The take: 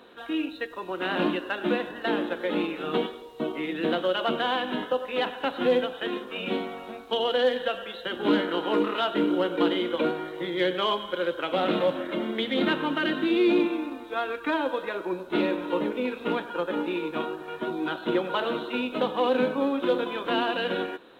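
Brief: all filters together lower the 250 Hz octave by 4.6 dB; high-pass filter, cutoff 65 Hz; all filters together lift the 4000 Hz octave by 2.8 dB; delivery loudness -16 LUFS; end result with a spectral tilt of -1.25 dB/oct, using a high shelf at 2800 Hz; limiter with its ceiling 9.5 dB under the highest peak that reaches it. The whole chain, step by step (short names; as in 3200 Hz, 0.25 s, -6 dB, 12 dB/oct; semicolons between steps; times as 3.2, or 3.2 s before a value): HPF 65 Hz; bell 250 Hz -6.5 dB; high shelf 2800 Hz -3 dB; bell 4000 Hz +6.5 dB; gain +16 dB; limiter -6.5 dBFS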